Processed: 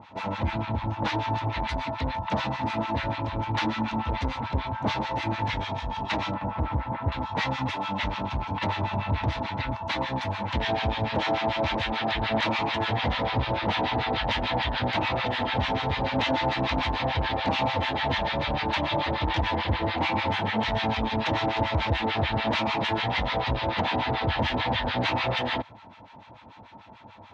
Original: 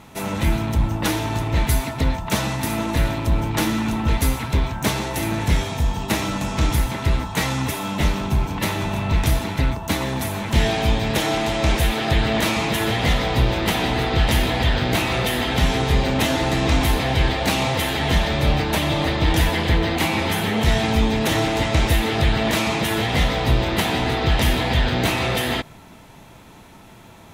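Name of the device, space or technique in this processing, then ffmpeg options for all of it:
guitar amplifier with harmonic tremolo: -filter_complex "[0:a]asettb=1/sr,asplit=3[a][b][c];[a]atrim=end=6.344[d];[b]atrim=start=6.34:end=7.12,asetpts=PTS-STARTPTS,afade=t=in:d=0.004:c=qsin,afade=t=out:st=0.776:d=0.004:c=qsin,lowpass=1.6k[e];[c]atrim=start=7.116[f];[d][e]acrossfade=d=0.004:c1=hsin:c2=qsin[g];[g][f]acrossfade=d=0.004:c1=qsin:c2=hsin,acrossover=split=1000[h][i];[h]aeval=exprs='val(0)*(1-1/2+1/2*cos(2*PI*6.8*n/s))':c=same[j];[i]aeval=exprs='val(0)*(1-1/2-1/2*cos(2*PI*6.8*n/s))':c=same[k];[j][k]amix=inputs=2:normalize=0,asoftclip=type=tanh:threshold=-16.5dB,highpass=84,equalizer=f=99:t=q:w=4:g=4,equalizer=f=160:t=q:w=4:g=-10,equalizer=f=390:t=q:w=4:g=-7,equalizer=f=560:t=q:w=4:g=3,equalizer=f=910:t=q:w=4:g=9,lowpass=f=4.3k:w=0.5412,lowpass=f=4.3k:w=1.3066"

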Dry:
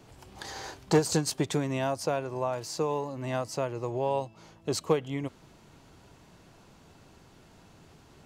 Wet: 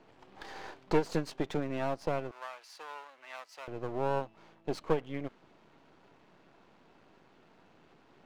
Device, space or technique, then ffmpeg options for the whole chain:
crystal radio: -filter_complex "[0:a]highpass=220,lowpass=2.9k,aeval=exprs='if(lt(val(0),0),0.251*val(0),val(0))':c=same,asettb=1/sr,asplit=3[a][b][c];[a]atrim=end=2.314[d];[b]atrim=start=2.31:end=3.68,asetpts=PTS-STARTPTS,afade=t=in:d=0.004:c=qsin,afade=t=out:st=1.366:d=0.004:c=qsin,highpass=1.4k[e];[c]atrim=start=3.676[f];[d][e]acrossfade=d=0.004:c1=hsin:c2=qsin[g];[g][f]acrossfade=d=0.004:c1=qsin:c2=hsin"

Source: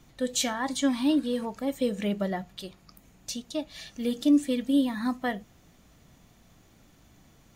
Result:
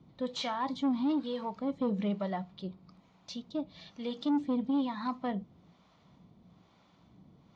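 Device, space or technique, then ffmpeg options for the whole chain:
guitar amplifier with harmonic tremolo: -filter_complex "[0:a]acrossover=split=560[a][b];[a]aeval=exprs='val(0)*(1-0.7/2+0.7/2*cos(2*PI*1.1*n/s))':c=same[c];[b]aeval=exprs='val(0)*(1-0.7/2-0.7/2*cos(2*PI*1.1*n/s))':c=same[d];[c][d]amix=inputs=2:normalize=0,asoftclip=type=tanh:threshold=-25dB,highpass=86,equalizer=f=180:t=q:w=4:g=7,equalizer=f=1k:t=q:w=4:g=6,equalizer=f=1.7k:t=q:w=4:g=-9,equalizer=f=2.7k:t=q:w=4:g=-6,lowpass=f=4.3k:w=0.5412,lowpass=f=4.3k:w=1.3066"

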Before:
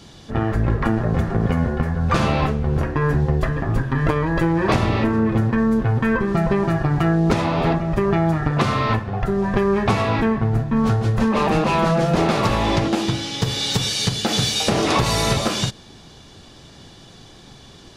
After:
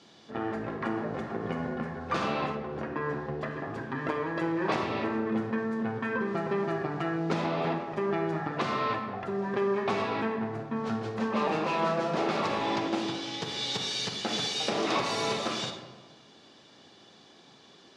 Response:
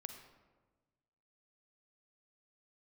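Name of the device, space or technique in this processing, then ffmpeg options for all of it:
supermarket ceiling speaker: -filter_complex "[0:a]highpass=260,lowpass=5.9k[a];[1:a]atrim=start_sample=2205[b];[a][b]afir=irnorm=-1:irlink=0,asettb=1/sr,asplit=3[c][d][e];[c]atrim=end=2.554[f];[d]atrim=start=2.55:end=3.51,asetpts=PTS-STARTPTS,afade=t=in:d=0.004:c=qsin,afade=t=out:st=0.956:d=0.004:c=qsin,highshelf=f=7.7k:g=-10.5[g];[e]atrim=start=3.506[h];[f][g]acrossfade=d=0.004:c1=hsin:c2=qsin[i];[i][h]acrossfade=d=0.004:c1=qsin:c2=hsin,volume=-4.5dB"

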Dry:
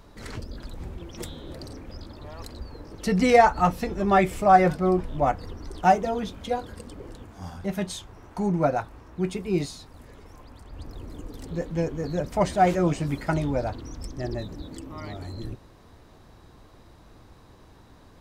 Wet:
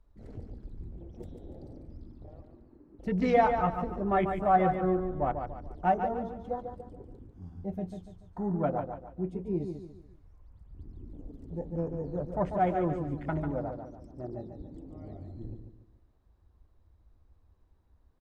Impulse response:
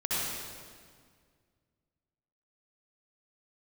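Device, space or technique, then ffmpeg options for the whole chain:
behind a face mask: -filter_complex "[0:a]afwtdn=0.02,highshelf=f=2k:g=-8,asettb=1/sr,asplit=3[a][b][c];[a]atrim=end=2.414[d];[b]atrim=start=2.41:end=2.99,asetpts=PTS-STARTPTS,afade=t=in:d=0.004:c=qsin,afade=t=out:st=0.576:d=0.004:c=qsin,acrossover=split=220 2800:gain=0.141 1 0.0794[e][f][g];[e][f][g]amix=inputs=3:normalize=0[h];[c]atrim=start=2.986[i];[d][h]acrossfade=d=0.004:c1=hsin:c2=qsin[j];[j][i]acrossfade=d=0.004:c1=qsin:c2=hsin,asettb=1/sr,asplit=3[k][l][m];[k]atrim=end=13.514[n];[l]atrim=start=13.51:end=14.58,asetpts=PTS-STARTPTS,afade=t=in:d=0.004:c=qsin,afade=t=out:st=1.066:d=0.004:c=qsin,highpass=f=140:p=1[o];[m]atrim=start=14.576[p];[n][o]acrossfade=d=0.004:c1=hsin:c2=qsin[q];[q][p]acrossfade=d=0.004:c1=qsin:c2=hsin,aecho=1:1:144|288|432|576:0.447|0.17|0.0645|0.0245,volume=-6.5dB"

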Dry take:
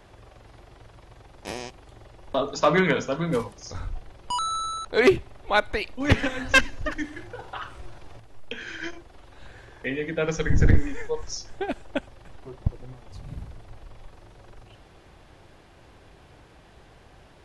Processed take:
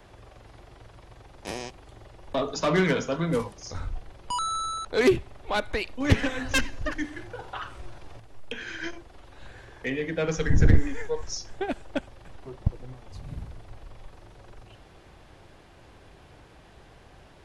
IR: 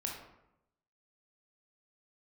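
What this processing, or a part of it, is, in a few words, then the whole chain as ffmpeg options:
one-band saturation: -filter_complex "[0:a]acrossover=split=400|3900[a][b][c];[b]asoftclip=type=tanh:threshold=-23dB[d];[a][d][c]amix=inputs=3:normalize=0"

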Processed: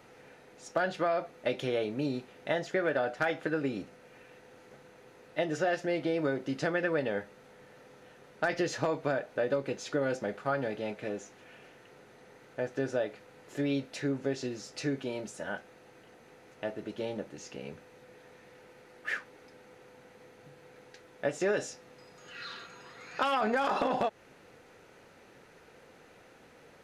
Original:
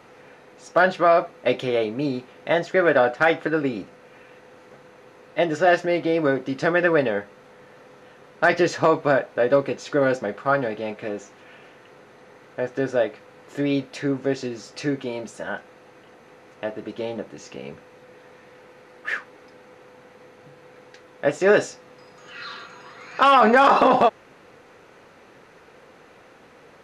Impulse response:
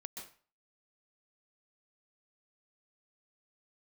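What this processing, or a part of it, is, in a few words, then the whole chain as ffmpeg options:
ASMR close-microphone chain: -af "lowshelf=f=130:g=4.5,equalizer=f=1.1k:w=5.5:g=-5.5,acompressor=threshold=-19dB:ratio=5,highshelf=f=6.5k:g=7.5,volume=-7dB"

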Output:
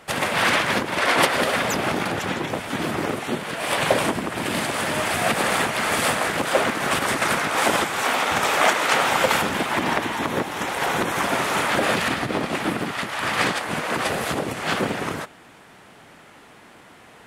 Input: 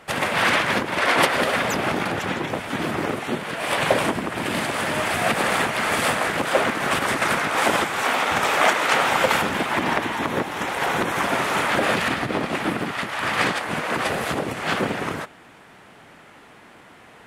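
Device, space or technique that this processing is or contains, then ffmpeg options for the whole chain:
exciter from parts: -filter_complex "[0:a]asplit=2[a][b];[b]highpass=3k,asoftclip=type=tanh:threshold=-21.5dB,volume=-6.5dB[c];[a][c]amix=inputs=2:normalize=0"

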